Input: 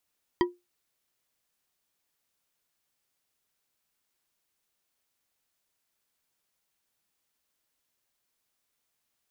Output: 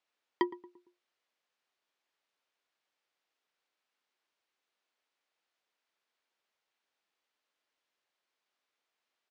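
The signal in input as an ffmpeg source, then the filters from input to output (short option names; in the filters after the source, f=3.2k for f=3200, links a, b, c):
-f lavfi -i "aevalsrc='0.141*pow(10,-3*t/0.21)*sin(2*PI*354*t)+0.0841*pow(10,-3*t/0.103)*sin(2*PI*976*t)+0.0501*pow(10,-3*t/0.064)*sin(2*PI*1913*t)+0.0299*pow(10,-3*t/0.045)*sin(2*PI*3162.3*t)+0.0178*pow(10,-3*t/0.034)*sin(2*PI*4722.4*t)':d=0.89:s=44100"
-filter_complex "[0:a]highpass=360,lowpass=3.8k,asplit=2[a][b];[b]adelay=114,lowpass=f=1k:p=1,volume=-15.5dB,asplit=2[c][d];[d]adelay=114,lowpass=f=1k:p=1,volume=0.46,asplit=2[e][f];[f]adelay=114,lowpass=f=1k:p=1,volume=0.46,asplit=2[g][h];[h]adelay=114,lowpass=f=1k:p=1,volume=0.46[i];[a][c][e][g][i]amix=inputs=5:normalize=0"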